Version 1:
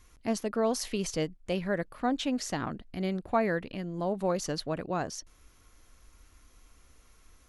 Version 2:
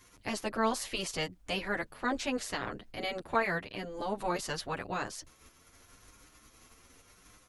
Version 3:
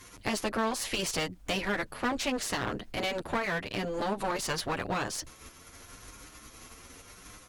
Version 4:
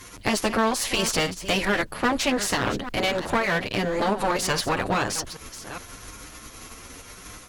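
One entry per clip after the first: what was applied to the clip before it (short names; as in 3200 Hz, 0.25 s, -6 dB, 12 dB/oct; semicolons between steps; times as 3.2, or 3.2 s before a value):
spectral limiter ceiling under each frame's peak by 17 dB; endless flanger 8.2 ms +0.85 Hz
compressor 3:1, threshold -35 dBFS, peak gain reduction 10 dB; one-sided clip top -41.5 dBFS; gain +9 dB
reverse delay 0.413 s, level -12 dB; gain +7.5 dB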